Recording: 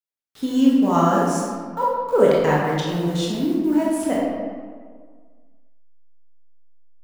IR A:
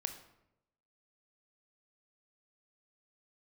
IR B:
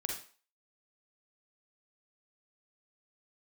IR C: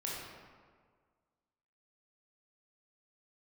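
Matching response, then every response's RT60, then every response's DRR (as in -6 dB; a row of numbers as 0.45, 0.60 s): C; 0.85, 0.40, 1.7 s; 7.0, 0.0, -5.5 dB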